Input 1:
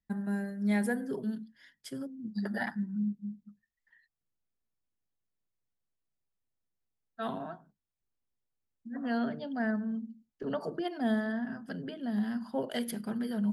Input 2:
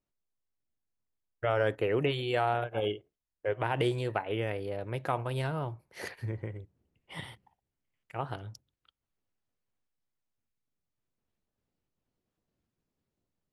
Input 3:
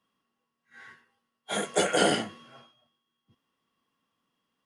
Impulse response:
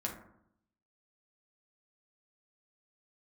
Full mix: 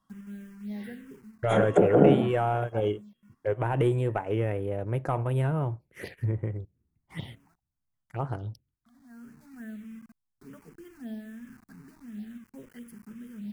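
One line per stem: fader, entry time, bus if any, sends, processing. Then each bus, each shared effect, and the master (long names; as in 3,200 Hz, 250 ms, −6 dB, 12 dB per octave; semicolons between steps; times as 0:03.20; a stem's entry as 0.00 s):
−14.0 dB, 0.00 s, no send, bit reduction 7 bits; automatic ducking −11 dB, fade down 0.30 s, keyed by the second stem
−3.0 dB, 0.00 s, no send, leveller curve on the samples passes 1
+3.0 dB, 0.00 s, no send, treble cut that deepens with the level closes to 630 Hz, closed at −22 dBFS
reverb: not used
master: low-shelf EQ 430 Hz +7.5 dB; phaser swept by the level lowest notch 420 Hz, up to 4,600 Hz, full sweep at −26.5 dBFS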